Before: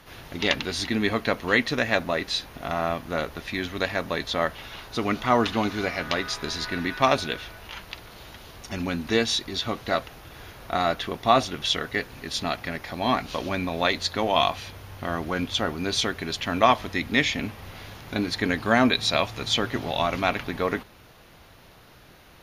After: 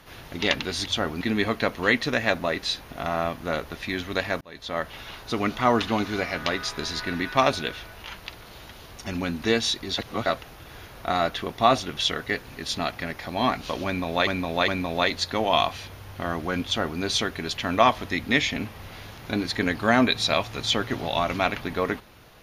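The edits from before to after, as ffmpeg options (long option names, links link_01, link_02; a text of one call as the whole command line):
ffmpeg -i in.wav -filter_complex "[0:a]asplit=8[link_01][link_02][link_03][link_04][link_05][link_06][link_07][link_08];[link_01]atrim=end=0.862[link_09];[link_02]atrim=start=15.478:end=15.832[link_10];[link_03]atrim=start=0.858:end=4.06,asetpts=PTS-STARTPTS,afade=type=out:start_time=3.198:duration=0.004:curve=hsin[link_11];[link_04]atrim=start=4.06:end=9.632,asetpts=PTS-STARTPTS,afade=type=in:duration=0.56[link_12];[link_05]atrim=start=9.628:end=9.912,asetpts=PTS-STARTPTS,areverse[link_13];[link_06]atrim=start=9.908:end=13.922[link_14];[link_07]atrim=start=13.508:end=13.922[link_15];[link_08]atrim=start=13.508[link_16];[link_09][link_10]acrossfade=duration=0.004:curve1=hsin:curve2=hsin[link_17];[link_11][link_12]concat=n=2:v=0:a=1[link_18];[link_17][link_18]acrossfade=duration=0.004:curve1=hsin:curve2=hsin[link_19];[link_19][link_13]acrossfade=duration=0.004:curve1=hsin:curve2=hsin[link_20];[link_20][link_14]acrossfade=duration=0.004:curve1=hsin:curve2=hsin[link_21];[link_21][link_15]acrossfade=duration=0.004:curve1=hsin:curve2=hsin[link_22];[link_22][link_16]acrossfade=duration=0.004:curve1=hsin:curve2=hsin" out.wav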